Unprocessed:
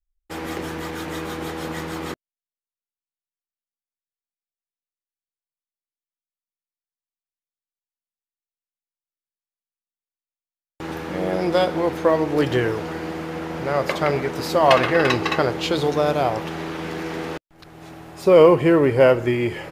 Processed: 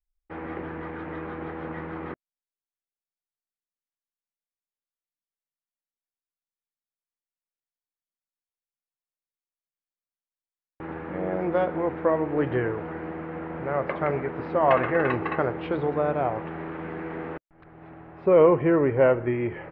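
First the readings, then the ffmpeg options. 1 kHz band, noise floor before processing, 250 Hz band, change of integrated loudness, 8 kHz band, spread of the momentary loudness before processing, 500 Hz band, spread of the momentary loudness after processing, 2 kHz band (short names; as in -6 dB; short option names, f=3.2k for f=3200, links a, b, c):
-5.0 dB, under -85 dBFS, -5.0 dB, -5.0 dB, under -35 dB, 16 LU, -5.0 dB, 16 LU, -6.5 dB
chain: -af "lowpass=f=2.1k:w=0.5412,lowpass=f=2.1k:w=1.3066,volume=-5dB"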